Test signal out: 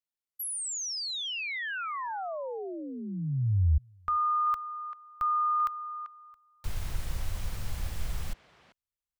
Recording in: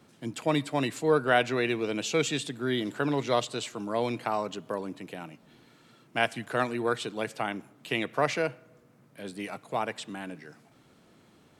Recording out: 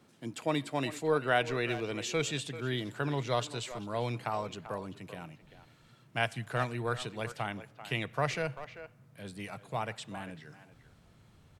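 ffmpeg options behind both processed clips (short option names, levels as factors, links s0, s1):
-filter_complex "[0:a]asplit=2[s0][s1];[s1]adelay=390,highpass=300,lowpass=3400,asoftclip=type=hard:threshold=0.119,volume=0.251[s2];[s0][s2]amix=inputs=2:normalize=0,asubboost=boost=10:cutoff=89,volume=0.631"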